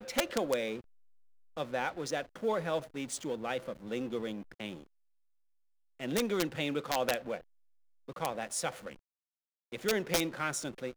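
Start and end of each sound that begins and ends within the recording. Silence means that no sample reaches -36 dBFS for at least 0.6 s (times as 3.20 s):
1.57–4.74 s
6.01–7.37 s
8.09–8.89 s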